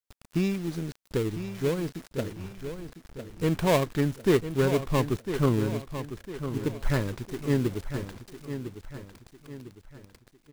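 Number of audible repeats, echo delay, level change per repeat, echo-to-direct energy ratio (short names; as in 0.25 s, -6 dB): 4, 1.003 s, -7.5 dB, -9.0 dB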